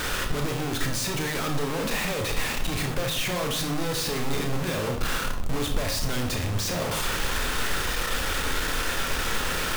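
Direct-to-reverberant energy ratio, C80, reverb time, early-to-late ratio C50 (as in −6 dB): 2.5 dB, 10.5 dB, 0.65 s, 7.0 dB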